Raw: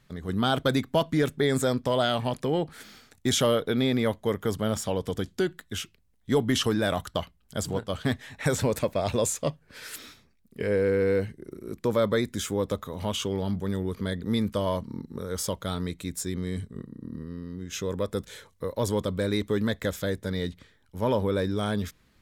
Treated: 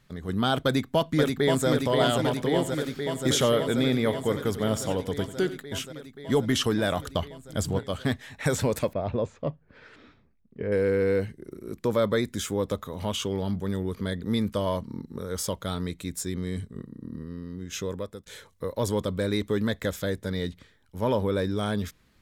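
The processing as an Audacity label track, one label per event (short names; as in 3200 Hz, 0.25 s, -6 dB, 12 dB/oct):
0.630000	1.680000	echo throw 0.53 s, feedback 80%, level -4 dB
2.270000	5.630000	echo 92 ms -14.5 dB
7.040000	7.790000	low shelf 140 Hz +8 dB
8.930000	10.720000	tape spacing loss at 10 kHz 42 dB
17.810000	18.260000	fade out, to -24 dB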